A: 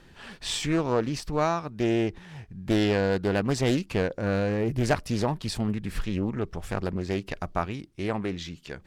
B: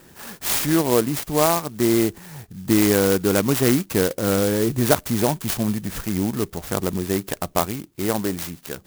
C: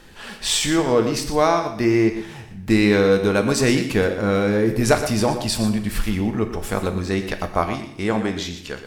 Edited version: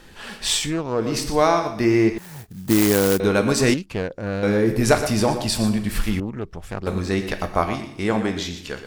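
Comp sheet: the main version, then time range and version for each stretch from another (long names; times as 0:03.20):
C
0:00.63–0:01.04: punch in from A, crossfade 0.24 s
0:02.18–0:03.20: punch in from B
0:03.74–0:04.43: punch in from A
0:06.20–0:06.87: punch in from A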